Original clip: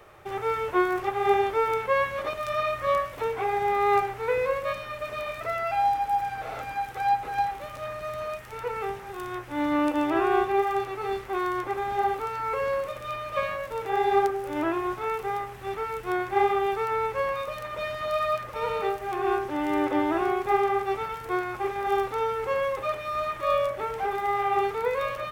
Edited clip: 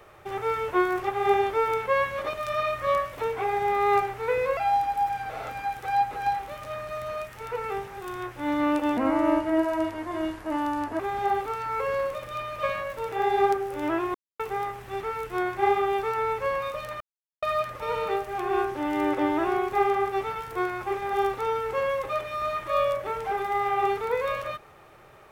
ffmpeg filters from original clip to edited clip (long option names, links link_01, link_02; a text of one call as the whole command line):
ffmpeg -i in.wav -filter_complex "[0:a]asplit=8[link_01][link_02][link_03][link_04][link_05][link_06][link_07][link_08];[link_01]atrim=end=4.572[link_09];[link_02]atrim=start=5.688:end=10.094[link_10];[link_03]atrim=start=10.09:end=11.73,asetpts=PTS-STARTPTS,asetrate=35721,aresample=44100[link_11];[link_04]atrim=start=11.726:end=14.88,asetpts=PTS-STARTPTS,afade=type=out:start_time=3.15:duration=0.004:curve=hsin[link_12];[link_05]atrim=start=14.88:end=15.13,asetpts=PTS-STARTPTS,volume=0[link_13];[link_06]atrim=start=15.13:end=17.74,asetpts=PTS-STARTPTS,afade=type=in:duration=0.004:curve=hsin,afade=type=out:start_time=2.606:duration=0.004:curve=hsin[link_14];[link_07]atrim=start=17.74:end=18.16,asetpts=PTS-STARTPTS,volume=0[link_15];[link_08]atrim=start=18.16,asetpts=PTS-STARTPTS,afade=type=in:duration=0.004:curve=hsin[link_16];[link_09][link_10]acrossfade=duration=0.004:curve1=hsin:curve2=hsin[link_17];[link_17][link_11]acrossfade=duration=0.004:curve1=hsin:curve2=hsin[link_18];[link_12][link_13][link_14][link_15][link_16]concat=n=5:v=0:a=1[link_19];[link_18][link_19]acrossfade=duration=0.004:curve1=hsin:curve2=hsin" out.wav